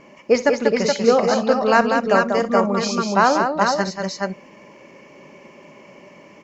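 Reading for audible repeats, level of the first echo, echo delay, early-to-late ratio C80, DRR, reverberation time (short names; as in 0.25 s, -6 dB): 3, -16.0 dB, 61 ms, none, none, none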